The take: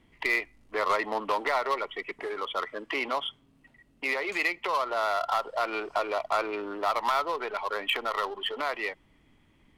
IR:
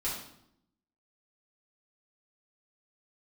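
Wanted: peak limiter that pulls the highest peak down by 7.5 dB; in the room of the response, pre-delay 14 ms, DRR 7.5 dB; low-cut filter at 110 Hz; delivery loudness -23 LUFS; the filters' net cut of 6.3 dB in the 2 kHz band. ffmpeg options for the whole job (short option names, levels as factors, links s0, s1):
-filter_complex "[0:a]highpass=110,equalizer=f=2000:t=o:g=-7.5,alimiter=level_in=1.06:limit=0.0631:level=0:latency=1,volume=0.944,asplit=2[s0][s1];[1:a]atrim=start_sample=2205,adelay=14[s2];[s1][s2]afir=irnorm=-1:irlink=0,volume=0.251[s3];[s0][s3]amix=inputs=2:normalize=0,volume=3.76"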